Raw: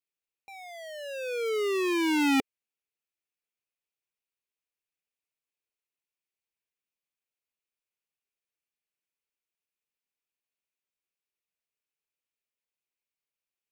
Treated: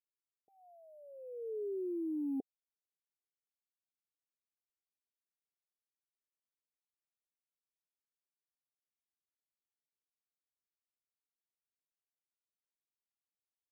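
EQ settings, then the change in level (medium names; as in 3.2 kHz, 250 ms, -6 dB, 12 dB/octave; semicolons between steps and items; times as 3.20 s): vowel filter a; inverse Chebyshev band-stop 1.1–5.5 kHz, stop band 60 dB; +11.0 dB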